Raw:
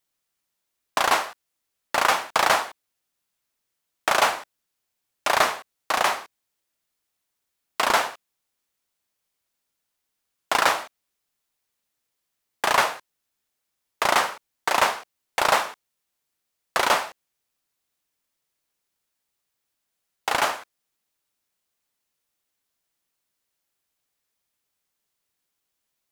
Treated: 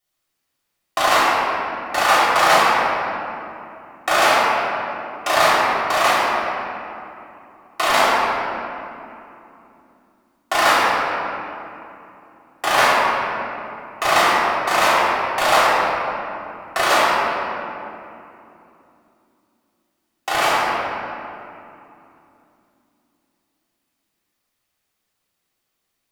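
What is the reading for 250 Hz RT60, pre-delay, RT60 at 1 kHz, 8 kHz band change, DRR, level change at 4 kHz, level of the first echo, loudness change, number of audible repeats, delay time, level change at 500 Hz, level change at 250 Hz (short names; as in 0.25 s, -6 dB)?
4.3 s, 3 ms, 2.7 s, +3.0 dB, -9.5 dB, +5.5 dB, none, +5.0 dB, none, none, +8.0 dB, +9.5 dB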